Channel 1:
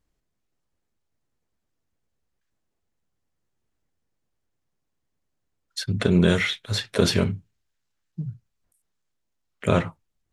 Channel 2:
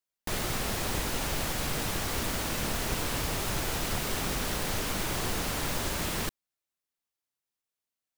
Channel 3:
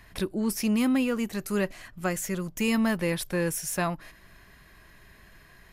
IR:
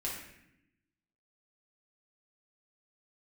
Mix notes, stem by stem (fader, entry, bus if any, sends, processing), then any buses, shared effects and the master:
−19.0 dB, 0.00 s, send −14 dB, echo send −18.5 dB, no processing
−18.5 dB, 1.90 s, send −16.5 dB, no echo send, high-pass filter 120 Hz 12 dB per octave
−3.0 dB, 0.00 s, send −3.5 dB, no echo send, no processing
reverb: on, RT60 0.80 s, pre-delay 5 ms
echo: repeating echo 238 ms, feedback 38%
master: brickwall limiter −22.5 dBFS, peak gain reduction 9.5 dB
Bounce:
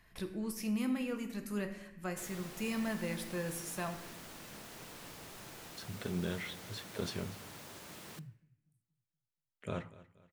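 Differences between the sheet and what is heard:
stem 1: send −14 dB → −22.5 dB
stem 3 −3.0 dB → −15.0 dB

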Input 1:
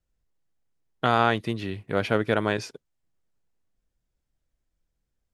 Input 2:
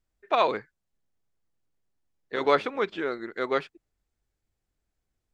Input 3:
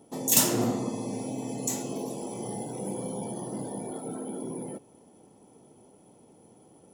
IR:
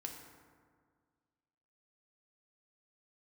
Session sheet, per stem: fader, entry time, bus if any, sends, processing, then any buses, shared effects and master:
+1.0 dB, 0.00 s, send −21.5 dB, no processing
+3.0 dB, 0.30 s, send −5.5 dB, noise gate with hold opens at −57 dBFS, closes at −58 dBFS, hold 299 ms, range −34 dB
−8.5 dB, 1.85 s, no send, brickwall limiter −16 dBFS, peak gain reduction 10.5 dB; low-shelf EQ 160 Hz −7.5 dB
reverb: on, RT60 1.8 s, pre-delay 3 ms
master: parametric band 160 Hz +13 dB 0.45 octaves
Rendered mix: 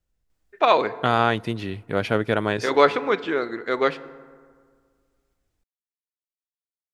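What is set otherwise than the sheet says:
stem 2: missing noise gate with hold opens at −57 dBFS, closes at −58 dBFS, hold 299 ms, range −34 dB
stem 3: muted
master: missing parametric band 160 Hz +13 dB 0.45 octaves

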